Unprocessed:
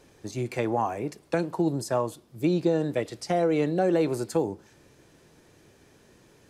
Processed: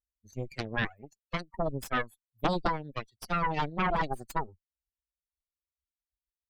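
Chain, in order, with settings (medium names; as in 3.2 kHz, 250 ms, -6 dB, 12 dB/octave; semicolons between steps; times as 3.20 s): expander on every frequency bin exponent 3; Chebyshev shaper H 3 -7 dB, 6 -7 dB, 7 -27 dB, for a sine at -16 dBFS; wow and flutter 24 cents; trim -1 dB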